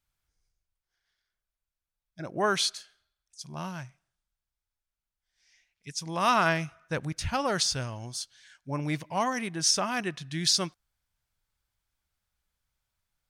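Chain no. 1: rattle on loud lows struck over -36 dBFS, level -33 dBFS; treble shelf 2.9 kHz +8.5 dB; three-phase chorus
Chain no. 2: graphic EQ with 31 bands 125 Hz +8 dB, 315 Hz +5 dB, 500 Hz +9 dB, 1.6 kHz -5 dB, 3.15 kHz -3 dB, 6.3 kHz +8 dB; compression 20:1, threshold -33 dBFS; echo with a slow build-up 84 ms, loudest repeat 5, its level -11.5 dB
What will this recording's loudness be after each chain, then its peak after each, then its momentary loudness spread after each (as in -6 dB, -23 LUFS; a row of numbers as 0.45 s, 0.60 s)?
-26.5 LUFS, -37.0 LUFS; -7.0 dBFS, -21.0 dBFS; 19 LU, 16 LU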